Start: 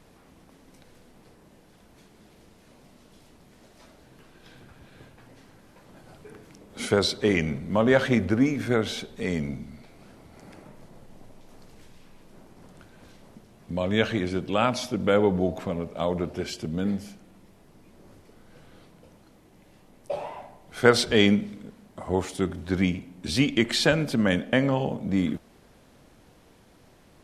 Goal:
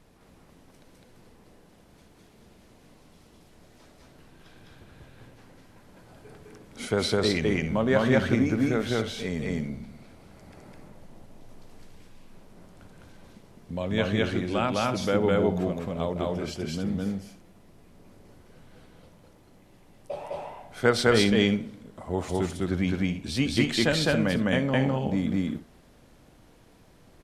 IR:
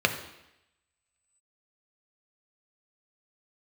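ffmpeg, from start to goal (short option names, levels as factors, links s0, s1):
-filter_complex "[0:a]lowshelf=f=110:g=4.5,asplit=2[s0][s1];[s1]aecho=0:1:207|268.2:1|0.251[s2];[s0][s2]amix=inputs=2:normalize=0,volume=0.596"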